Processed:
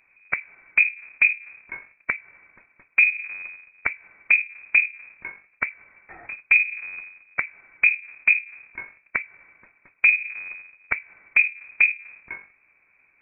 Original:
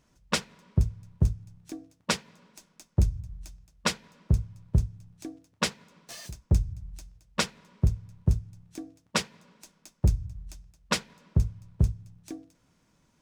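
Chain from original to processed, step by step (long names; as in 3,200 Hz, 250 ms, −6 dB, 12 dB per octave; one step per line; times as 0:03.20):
each half-wave held at its own peak
treble cut that deepens with the level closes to 380 Hz, closed at −20 dBFS
voice inversion scrambler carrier 2,500 Hz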